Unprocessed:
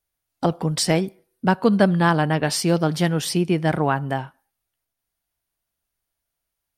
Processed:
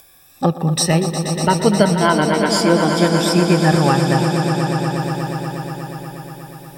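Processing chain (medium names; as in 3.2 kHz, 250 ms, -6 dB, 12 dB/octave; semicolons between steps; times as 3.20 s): drifting ripple filter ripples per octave 1.8, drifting +0.32 Hz, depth 15 dB; upward compressor, threshold -27 dBFS; echo with a slow build-up 120 ms, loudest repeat 5, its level -10.5 dB; trim +1 dB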